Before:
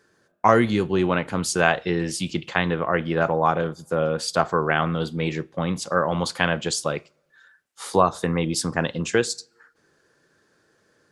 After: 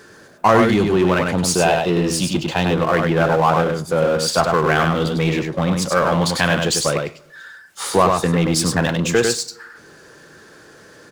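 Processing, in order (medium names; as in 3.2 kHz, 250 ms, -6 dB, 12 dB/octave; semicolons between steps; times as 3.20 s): time-frequency box 1.31–2.77 s, 1–2.4 kHz -7 dB; delay 99 ms -5.5 dB; power-law waveshaper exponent 0.7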